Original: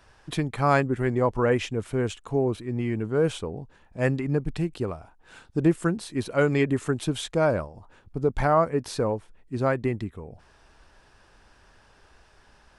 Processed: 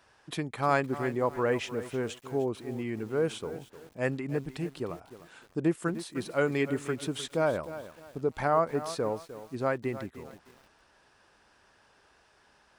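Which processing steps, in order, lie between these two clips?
high-pass filter 220 Hz 6 dB per octave
feedback echo at a low word length 305 ms, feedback 35%, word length 7 bits, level −13 dB
level −4 dB

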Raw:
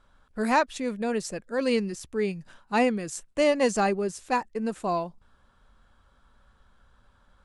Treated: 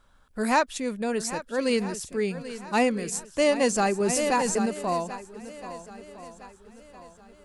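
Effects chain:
high-shelf EQ 6,700 Hz +9.5 dB
on a send: feedback echo with a long and a short gap by turns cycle 1,310 ms, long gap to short 1.5 to 1, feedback 35%, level −13.5 dB
0:04.00–0:04.66: on the sum: envelope flattener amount 70%

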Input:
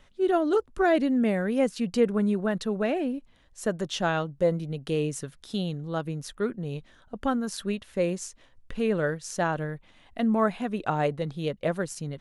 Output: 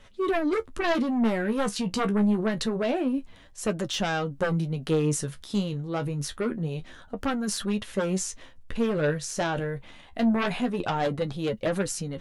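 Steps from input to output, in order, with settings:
sine wavefolder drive 10 dB, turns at −10.5 dBFS
transient designer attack +2 dB, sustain +7 dB
flanger 0.26 Hz, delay 9 ms, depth 6.4 ms, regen +39%
level −7.5 dB

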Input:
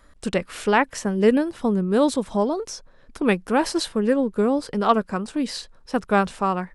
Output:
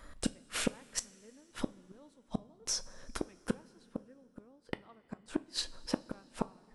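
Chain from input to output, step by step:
gate with flip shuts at −18 dBFS, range −41 dB
coupled-rooms reverb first 0.26 s, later 2.8 s, from −18 dB, DRR 12 dB
level +1 dB

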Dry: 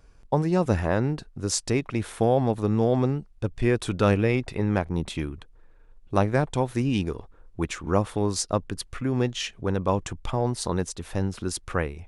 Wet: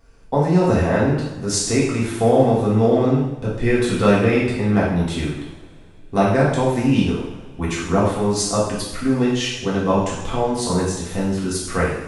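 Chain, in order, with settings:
coupled-rooms reverb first 0.83 s, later 2.9 s, from −20 dB, DRR −7.5 dB
level −1 dB

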